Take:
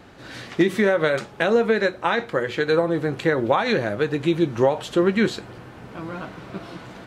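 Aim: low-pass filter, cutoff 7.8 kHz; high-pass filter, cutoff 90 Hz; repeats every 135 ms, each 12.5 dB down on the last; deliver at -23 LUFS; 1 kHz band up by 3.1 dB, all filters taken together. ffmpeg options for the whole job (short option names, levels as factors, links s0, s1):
-af "highpass=90,lowpass=7800,equalizer=f=1000:t=o:g=4,aecho=1:1:135|270|405:0.237|0.0569|0.0137,volume=0.75"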